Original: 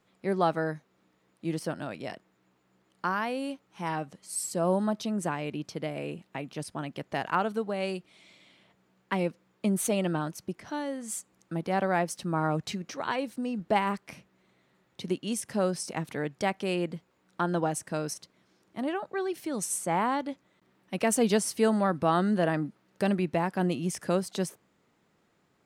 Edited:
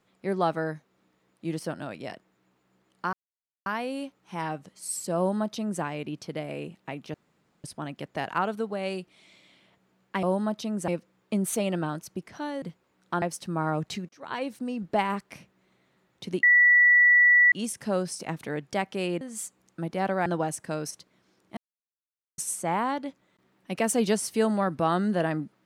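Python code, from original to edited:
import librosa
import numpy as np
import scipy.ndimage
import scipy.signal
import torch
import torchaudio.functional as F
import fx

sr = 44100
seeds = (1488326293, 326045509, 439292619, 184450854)

y = fx.edit(x, sr, fx.insert_silence(at_s=3.13, length_s=0.53),
    fx.duplicate(start_s=4.64, length_s=0.65, to_s=9.2),
    fx.insert_room_tone(at_s=6.61, length_s=0.5),
    fx.swap(start_s=10.94, length_s=1.05, other_s=16.89, other_length_s=0.6),
    fx.fade_in_span(start_s=12.86, length_s=0.35),
    fx.insert_tone(at_s=15.2, length_s=1.09, hz=1950.0, db=-14.5),
    fx.silence(start_s=18.8, length_s=0.81), tone=tone)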